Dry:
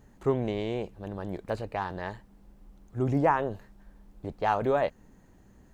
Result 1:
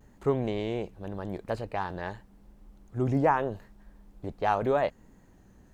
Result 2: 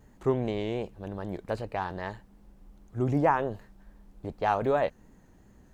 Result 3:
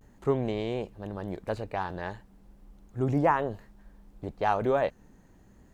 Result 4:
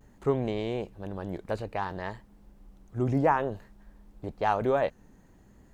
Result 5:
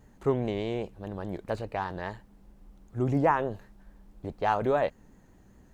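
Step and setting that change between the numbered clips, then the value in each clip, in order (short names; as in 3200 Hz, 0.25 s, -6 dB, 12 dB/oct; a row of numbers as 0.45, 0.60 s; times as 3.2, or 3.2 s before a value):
vibrato, rate: 0.85, 2.6, 0.37, 0.57, 4.9 Hz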